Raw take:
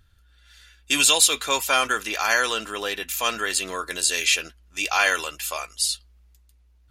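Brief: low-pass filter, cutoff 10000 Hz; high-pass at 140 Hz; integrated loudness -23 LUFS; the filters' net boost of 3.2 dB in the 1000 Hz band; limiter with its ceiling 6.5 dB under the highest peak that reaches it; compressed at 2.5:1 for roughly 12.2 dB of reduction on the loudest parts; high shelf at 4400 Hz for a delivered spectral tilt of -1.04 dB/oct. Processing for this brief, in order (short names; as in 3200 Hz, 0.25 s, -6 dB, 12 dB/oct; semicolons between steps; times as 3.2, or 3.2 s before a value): HPF 140 Hz; LPF 10000 Hz; bell 1000 Hz +4 dB; high shelf 4400 Hz +3.5 dB; compressor 2.5:1, threshold -30 dBFS; gain +8 dB; limiter -11 dBFS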